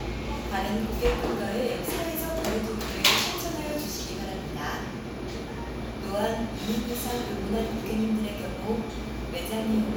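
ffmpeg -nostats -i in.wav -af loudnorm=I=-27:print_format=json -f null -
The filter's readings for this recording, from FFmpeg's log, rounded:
"input_i" : "-29.2",
"input_tp" : "-2.9",
"input_lra" : "4.1",
"input_thresh" : "-39.2",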